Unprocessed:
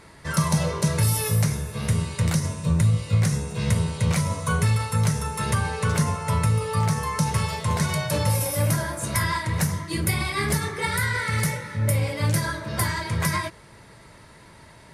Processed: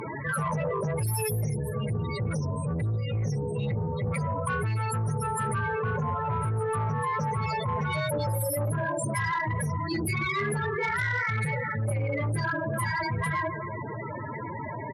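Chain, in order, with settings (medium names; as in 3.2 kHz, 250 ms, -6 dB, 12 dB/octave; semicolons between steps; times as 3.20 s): high-pass 110 Hz 24 dB/octave; band-stop 770 Hz, Q 12; feedback delay 137 ms, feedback 58%, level -22.5 dB; loudest bins only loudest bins 16; in parallel at -5.5 dB: saturation -23 dBFS, distortion -12 dB; on the sum: Chebyshev shaper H 5 -20 dB, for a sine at -9.5 dBFS; peaking EQ 180 Hz -12.5 dB 0.41 oct; level flattener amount 70%; trim -9 dB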